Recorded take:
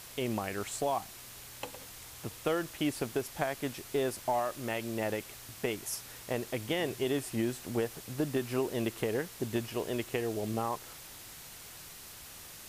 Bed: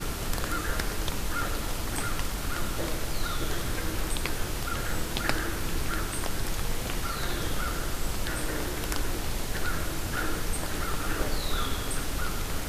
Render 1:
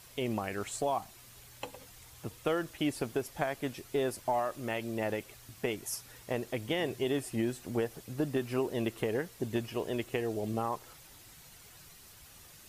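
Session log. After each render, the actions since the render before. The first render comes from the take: noise reduction 8 dB, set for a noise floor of -49 dBFS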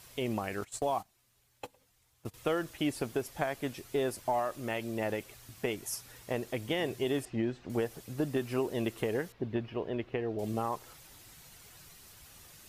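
0.61–2.34 s: gate -41 dBFS, range -17 dB; 7.25–7.70 s: distance through air 190 m; 9.32–10.39 s: distance through air 310 m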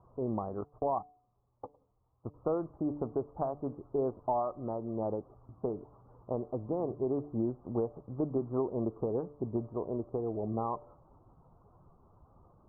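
steep low-pass 1.2 kHz 72 dB/octave; de-hum 146.4 Hz, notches 5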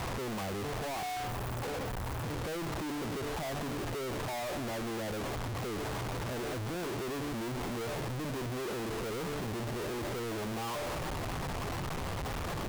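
one-bit comparator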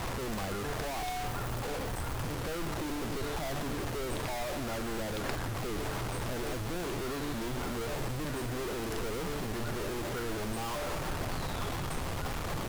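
add bed -12 dB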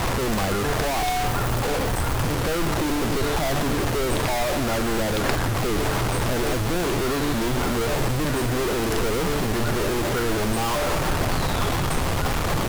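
trim +12 dB

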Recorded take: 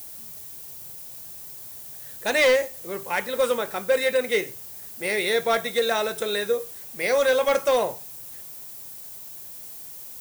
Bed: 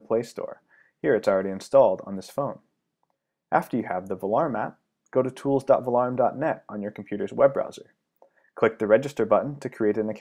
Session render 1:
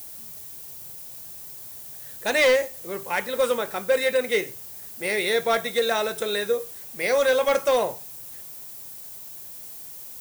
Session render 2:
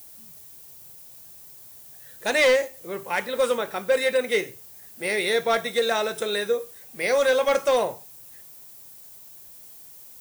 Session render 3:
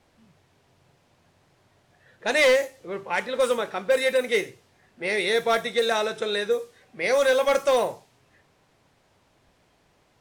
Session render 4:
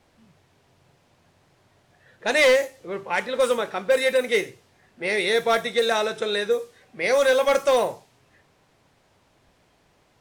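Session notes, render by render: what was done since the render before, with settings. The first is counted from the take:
no audible change
noise print and reduce 6 dB
level-controlled noise filter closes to 2.1 kHz, open at -17.5 dBFS
trim +1.5 dB

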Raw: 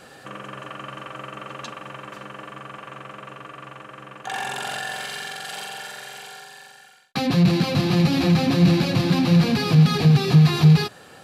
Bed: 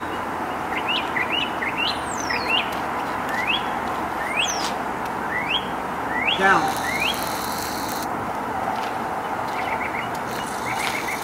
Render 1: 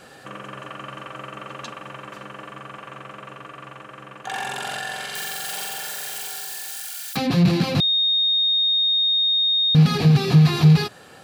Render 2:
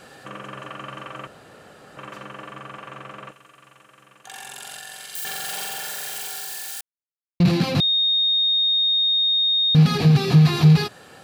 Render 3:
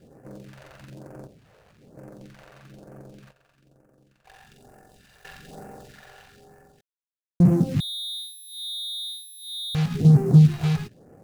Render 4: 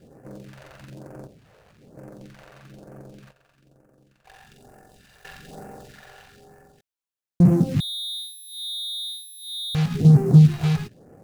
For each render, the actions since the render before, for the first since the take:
5.15–7.17 s: zero-crossing glitches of -25 dBFS; 7.80–9.75 s: bleep 3.7 kHz -16.5 dBFS
1.27–1.97 s: room tone; 3.31–5.25 s: pre-emphasis filter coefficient 0.8; 6.81–7.40 s: mute
median filter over 41 samples; phase shifter stages 2, 1.1 Hz, lowest notch 230–3400 Hz
trim +1.5 dB

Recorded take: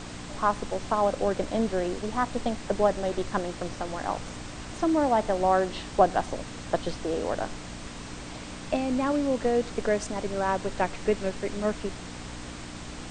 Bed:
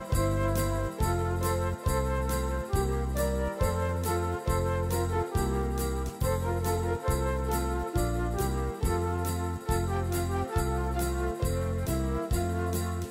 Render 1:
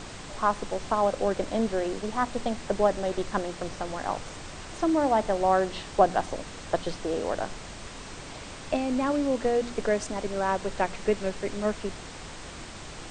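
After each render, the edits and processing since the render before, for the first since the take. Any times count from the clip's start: de-hum 60 Hz, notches 5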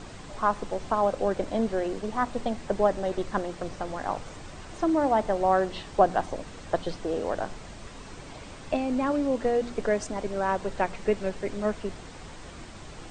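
noise reduction 6 dB, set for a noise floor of -42 dBFS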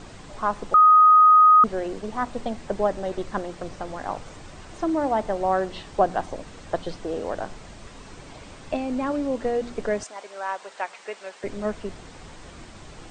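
0.74–1.64 s: bleep 1.25 kHz -10 dBFS; 10.03–11.44 s: high-pass 780 Hz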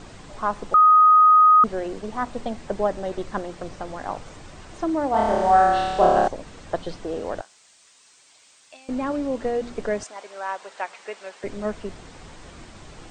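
5.11–6.28 s: flutter echo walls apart 4.8 m, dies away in 1.4 s; 7.41–8.89 s: differentiator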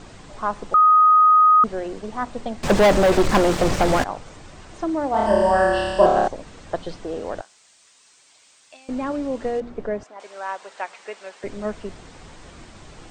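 2.63–4.04 s: waveshaping leveller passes 5; 5.26–6.06 s: rippled EQ curve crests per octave 1.3, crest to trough 14 dB; 9.60–10.20 s: low-pass 1.1 kHz 6 dB/octave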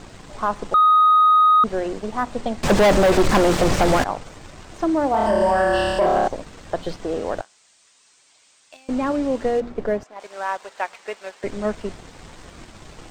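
waveshaping leveller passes 1; peak limiter -11 dBFS, peak gain reduction 8 dB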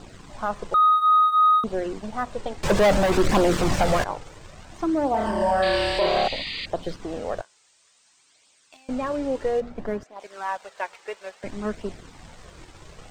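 flange 0.59 Hz, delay 0.2 ms, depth 2.2 ms, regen -40%; 5.62–6.66 s: painted sound noise 1.8–4.9 kHz -32 dBFS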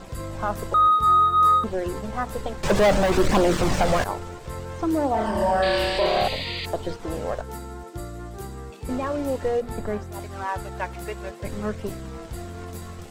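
add bed -6.5 dB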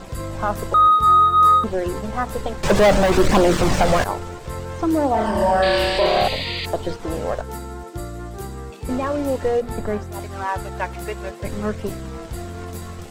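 trim +4 dB

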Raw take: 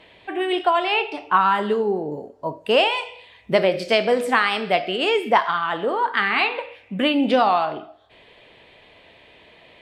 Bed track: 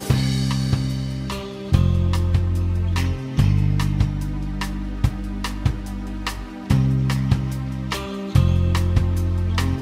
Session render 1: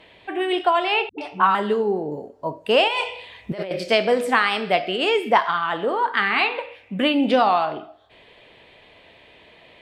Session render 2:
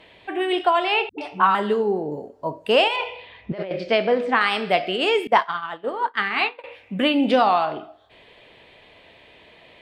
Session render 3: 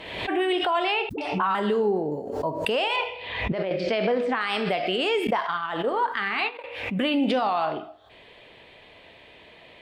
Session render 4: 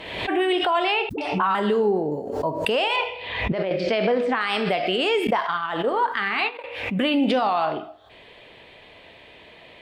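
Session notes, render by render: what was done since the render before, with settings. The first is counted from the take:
1.09–1.55 s: phase dispersion highs, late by 92 ms, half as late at 310 Hz; 2.88–3.71 s: compressor with a negative ratio -27 dBFS
2.96–4.41 s: distance through air 200 m; 5.27–6.64 s: expander -18 dBFS
peak limiter -16 dBFS, peak gain reduction 12 dB; swell ahead of each attack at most 51 dB/s
trim +2.5 dB

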